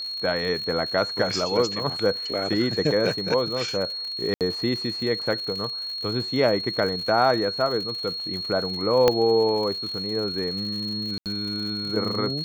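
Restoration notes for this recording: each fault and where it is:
surface crackle 120 per second −32 dBFS
whistle 4,300 Hz −29 dBFS
0:04.34–0:04.41: drop-out 68 ms
0:09.08: click −5 dBFS
0:11.18–0:11.26: drop-out 78 ms

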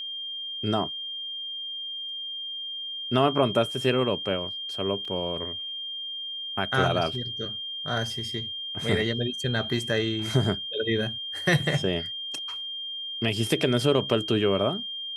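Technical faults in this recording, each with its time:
whistle 3,200 Hz −32 dBFS
0:05.05: drop-out 3.4 ms

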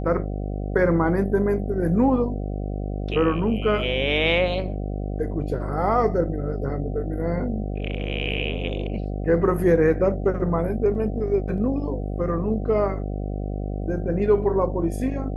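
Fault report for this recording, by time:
mains buzz 50 Hz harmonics 15 −28 dBFS

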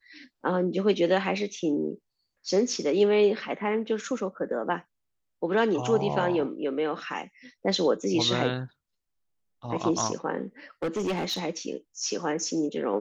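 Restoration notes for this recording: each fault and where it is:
0:10.83–0:11.39: clipping −24.5 dBFS

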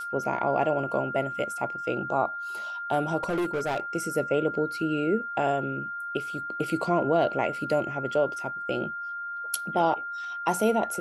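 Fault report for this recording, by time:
whistle 1,400 Hz −32 dBFS
0:03.23–0:03.80: clipping −24 dBFS

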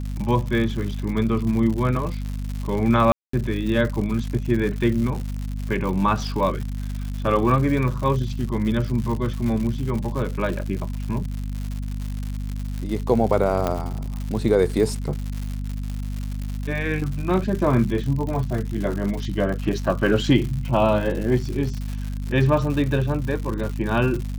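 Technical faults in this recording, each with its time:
surface crackle 160 per second −28 dBFS
mains hum 50 Hz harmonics 5 −28 dBFS
0:03.12–0:03.33: drop-out 214 ms
0:13.67: click −10 dBFS

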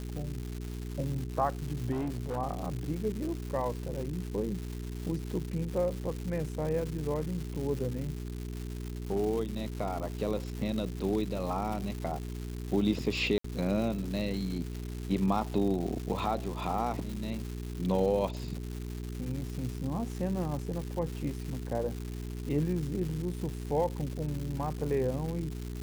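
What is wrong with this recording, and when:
surface crackle 340 per second −36 dBFS
mains hum 60 Hz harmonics 7 −38 dBFS
0:01.91–0:02.37: clipping −29.5 dBFS
0:13.38–0:13.44: drop-out 64 ms

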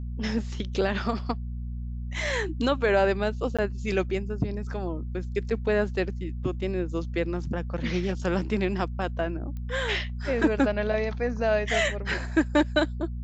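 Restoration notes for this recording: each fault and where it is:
mains hum 60 Hz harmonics 4 −33 dBFS
0:03.57–0:03.59: drop-out 16 ms
0:09.57: click −27 dBFS

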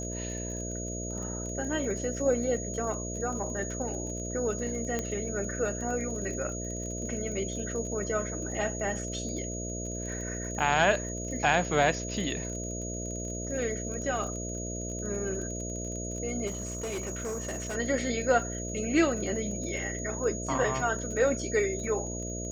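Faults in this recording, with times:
mains buzz 60 Hz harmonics 11 −37 dBFS
surface crackle 31 per second −38 dBFS
whistle 6,700 Hz −38 dBFS
0:04.99: click −17 dBFS
0:16.46–0:17.76: clipping −30.5 dBFS

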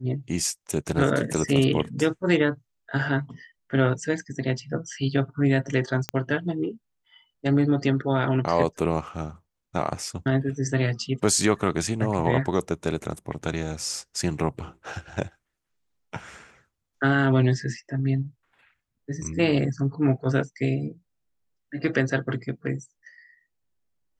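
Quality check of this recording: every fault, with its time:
0:06.09: click −11 dBFS

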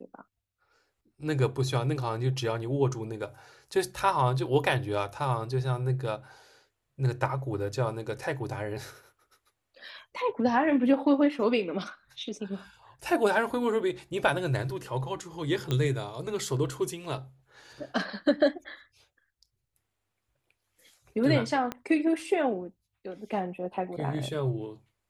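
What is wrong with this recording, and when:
0:15.71: click −16 dBFS
0:21.72: click −18 dBFS

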